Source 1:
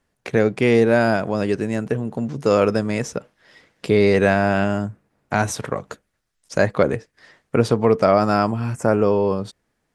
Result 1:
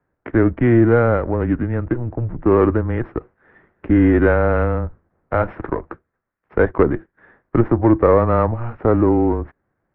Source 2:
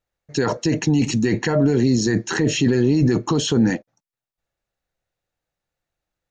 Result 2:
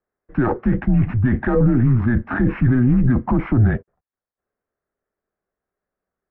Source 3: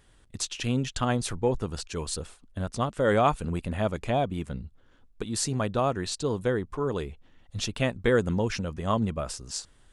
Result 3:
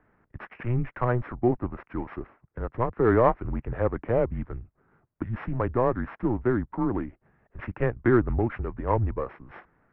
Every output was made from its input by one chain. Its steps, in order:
sorted samples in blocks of 8 samples; mistuned SSB -120 Hz 150–2100 Hz; trim +3 dB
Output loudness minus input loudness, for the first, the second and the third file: +2.0 LU, +1.0 LU, +1.5 LU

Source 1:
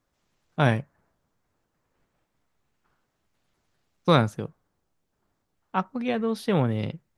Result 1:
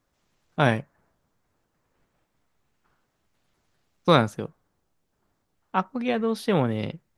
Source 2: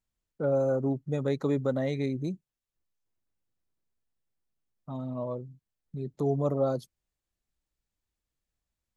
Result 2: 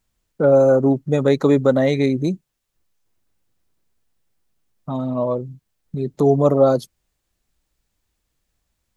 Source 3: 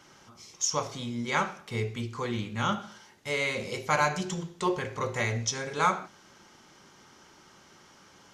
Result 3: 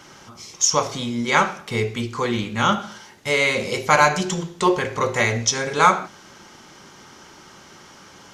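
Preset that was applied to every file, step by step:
dynamic bell 110 Hz, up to -5 dB, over -43 dBFS, Q 1; peak normalisation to -3 dBFS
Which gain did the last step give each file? +2.0 dB, +13.5 dB, +10.0 dB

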